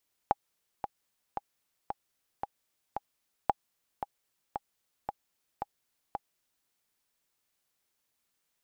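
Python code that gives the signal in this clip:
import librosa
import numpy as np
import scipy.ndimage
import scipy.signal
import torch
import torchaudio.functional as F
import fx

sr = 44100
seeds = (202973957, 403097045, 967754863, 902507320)

y = fx.click_track(sr, bpm=113, beats=6, bars=2, hz=816.0, accent_db=9.5, level_db=-10.5)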